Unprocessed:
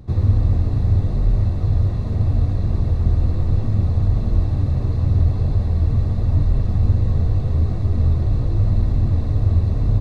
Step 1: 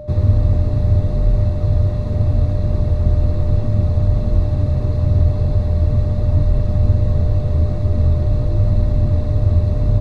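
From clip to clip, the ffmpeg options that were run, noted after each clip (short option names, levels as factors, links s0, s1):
-af "aeval=exprs='val(0)+0.0224*sin(2*PI*600*n/s)':c=same,volume=1.26"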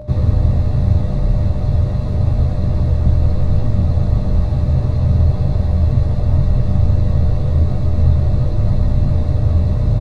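-filter_complex "[0:a]asplit=2[s0][s1];[s1]adelay=16,volume=0.708[s2];[s0][s2]amix=inputs=2:normalize=0,volume=1.12"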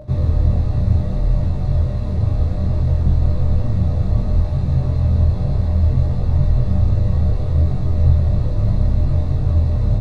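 -af "flanger=delay=22.5:depth=5.5:speed=0.64"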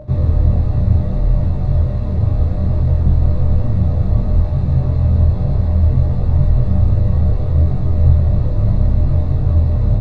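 -af "highshelf=f=3600:g=-10,volume=1.33"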